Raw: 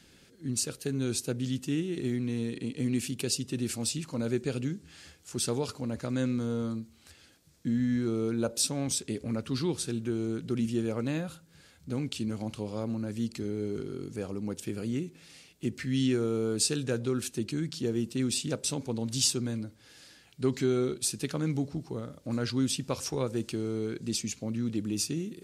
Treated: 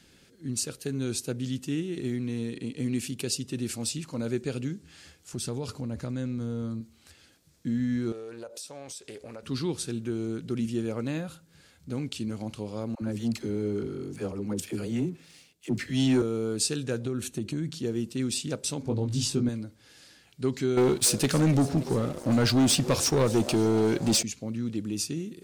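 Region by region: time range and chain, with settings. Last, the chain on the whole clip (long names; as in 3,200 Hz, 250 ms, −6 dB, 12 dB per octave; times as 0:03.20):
0:05.33–0:06.81: low-shelf EQ 190 Hz +9.5 dB + downward compressor 2.5 to 1, threshold −31 dBFS
0:08.12–0:09.43: low shelf with overshoot 350 Hz −10.5 dB, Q 1.5 + downward compressor 8 to 1, threshold −37 dBFS + highs frequency-modulated by the lows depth 0.17 ms
0:12.95–0:16.22: all-pass dispersion lows, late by 63 ms, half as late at 490 Hz + leveller curve on the samples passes 1 + multiband upward and downward expander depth 40%
0:17.05–0:17.78: low-shelf EQ 400 Hz +5.5 dB + notch filter 5,000 Hz, Q 6.6 + downward compressor 4 to 1, threshold −26 dBFS
0:18.82–0:19.49: spectral tilt −2.5 dB per octave + double-tracking delay 20 ms −3.5 dB
0:20.77–0:24.23: echo with shifted repeats 288 ms, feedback 61%, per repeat +110 Hz, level −20 dB + leveller curve on the samples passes 3
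whole clip: no processing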